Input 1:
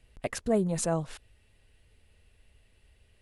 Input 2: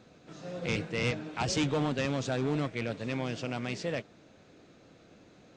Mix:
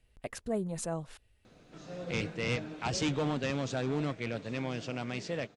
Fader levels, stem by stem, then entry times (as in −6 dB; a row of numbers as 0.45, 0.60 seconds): −7.0, −2.0 decibels; 0.00, 1.45 seconds